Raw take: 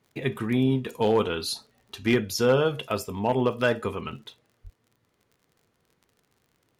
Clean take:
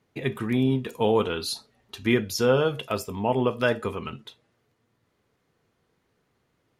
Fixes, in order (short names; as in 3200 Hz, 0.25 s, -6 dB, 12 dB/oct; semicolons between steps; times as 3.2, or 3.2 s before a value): clip repair -13 dBFS; de-click; 4.63–4.75 HPF 140 Hz 24 dB/oct